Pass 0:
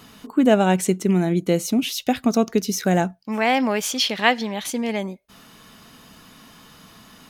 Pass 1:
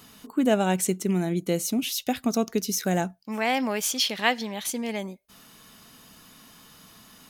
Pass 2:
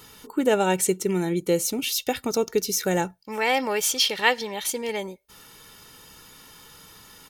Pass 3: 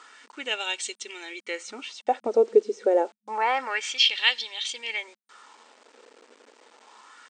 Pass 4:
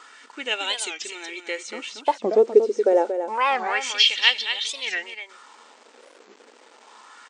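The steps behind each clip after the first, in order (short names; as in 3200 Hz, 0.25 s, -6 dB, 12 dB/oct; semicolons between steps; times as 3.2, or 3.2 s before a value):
high shelf 5700 Hz +9 dB; gain -6 dB
comb 2.2 ms, depth 60%; gain +2 dB
wah 0.28 Hz 470–3500 Hz, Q 2.8; requantised 10-bit, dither none; FFT band-pass 210–9000 Hz; gain +7.5 dB
vibrato 1.5 Hz 10 cents; echo 0.232 s -8.5 dB; record warp 45 rpm, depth 250 cents; gain +3 dB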